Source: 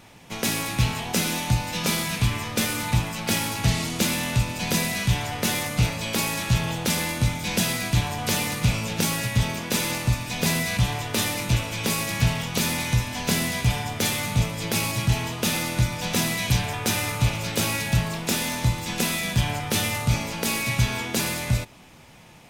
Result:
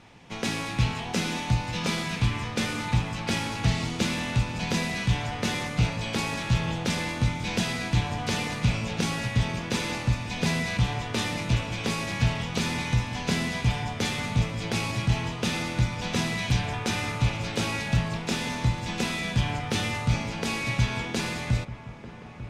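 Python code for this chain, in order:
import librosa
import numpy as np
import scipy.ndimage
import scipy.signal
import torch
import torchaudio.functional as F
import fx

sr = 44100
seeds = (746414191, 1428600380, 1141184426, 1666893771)

y = fx.air_absorb(x, sr, metres=81.0)
y = fx.notch(y, sr, hz=610.0, q=16.0)
y = fx.echo_wet_lowpass(y, sr, ms=894, feedback_pct=63, hz=1600.0, wet_db=-14.0)
y = y * 10.0 ** (-2.0 / 20.0)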